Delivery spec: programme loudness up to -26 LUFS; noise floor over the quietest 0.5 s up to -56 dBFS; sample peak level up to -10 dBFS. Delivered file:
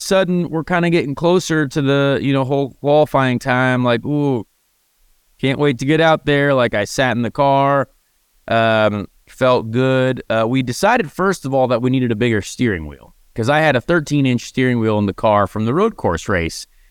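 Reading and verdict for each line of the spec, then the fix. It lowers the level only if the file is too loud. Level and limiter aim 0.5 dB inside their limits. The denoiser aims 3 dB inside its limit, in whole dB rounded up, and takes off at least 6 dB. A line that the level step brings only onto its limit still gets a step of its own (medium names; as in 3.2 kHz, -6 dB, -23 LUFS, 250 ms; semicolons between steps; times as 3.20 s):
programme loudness -16.5 LUFS: fail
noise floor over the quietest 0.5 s -62 dBFS: pass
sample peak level -3.0 dBFS: fail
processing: trim -10 dB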